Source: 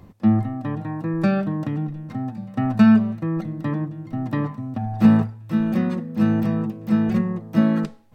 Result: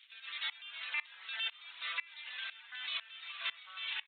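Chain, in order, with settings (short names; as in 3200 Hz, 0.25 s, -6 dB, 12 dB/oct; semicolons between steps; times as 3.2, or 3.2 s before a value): zero-crossing step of -26.5 dBFS; Bessel high-pass 2300 Hz, order 4; frequency shift +21 Hz; speed mistake 7.5 ips tape played at 15 ips; downsampling 8000 Hz; echoes that change speed 0.115 s, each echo -5 st, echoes 3, each echo -6 dB; reverb removal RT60 0.66 s; echo 0.137 s -16.5 dB; on a send at -15.5 dB: reverb RT60 1.0 s, pre-delay 35 ms; on the sum: limiter -39.5 dBFS, peak gain reduction 11 dB; dB-ramp tremolo swelling 2 Hz, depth 24 dB; gain +15.5 dB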